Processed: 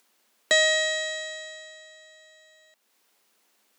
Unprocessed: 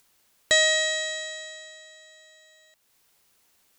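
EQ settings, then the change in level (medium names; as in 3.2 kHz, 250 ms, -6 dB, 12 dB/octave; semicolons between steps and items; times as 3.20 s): elliptic high-pass 200 Hz; treble shelf 5.2 kHz -5 dB; +1.5 dB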